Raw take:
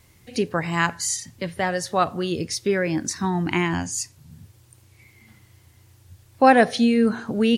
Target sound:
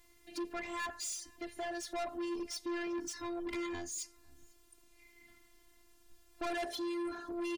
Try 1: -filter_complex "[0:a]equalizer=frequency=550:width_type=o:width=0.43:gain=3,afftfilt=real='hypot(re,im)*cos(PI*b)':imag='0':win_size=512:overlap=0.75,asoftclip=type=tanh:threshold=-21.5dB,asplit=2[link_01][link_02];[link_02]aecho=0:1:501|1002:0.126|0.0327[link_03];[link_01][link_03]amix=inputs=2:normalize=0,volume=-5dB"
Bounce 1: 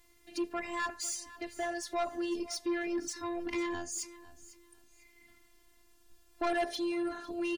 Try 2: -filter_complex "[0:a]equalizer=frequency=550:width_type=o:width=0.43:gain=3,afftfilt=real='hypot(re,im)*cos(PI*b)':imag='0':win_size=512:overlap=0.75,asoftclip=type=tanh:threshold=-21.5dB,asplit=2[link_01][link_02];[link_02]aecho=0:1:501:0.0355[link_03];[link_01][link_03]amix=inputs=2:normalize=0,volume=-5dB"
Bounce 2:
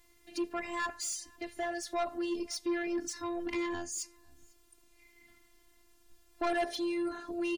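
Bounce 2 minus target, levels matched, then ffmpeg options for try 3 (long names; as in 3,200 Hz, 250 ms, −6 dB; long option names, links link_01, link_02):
soft clipping: distortion −4 dB
-filter_complex "[0:a]equalizer=frequency=550:width_type=o:width=0.43:gain=3,afftfilt=real='hypot(re,im)*cos(PI*b)':imag='0':win_size=512:overlap=0.75,asoftclip=type=tanh:threshold=-29.5dB,asplit=2[link_01][link_02];[link_02]aecho=0:1:501:0.0355[link_03];[link_01][link_03]amix=inputs=2:normalize=0,volume=-5dB"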